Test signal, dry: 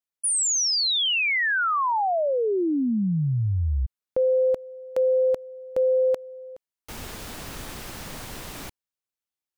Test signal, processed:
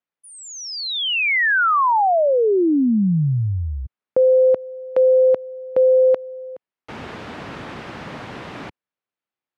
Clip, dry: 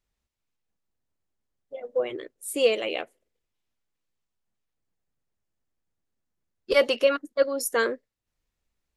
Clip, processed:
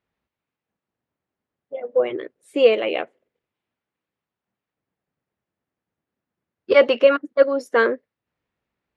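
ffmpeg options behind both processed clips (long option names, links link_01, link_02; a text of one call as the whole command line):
ffmpeg -i in.wav -af "highpass=120,lowpass=2400,volume=7dB" out.wav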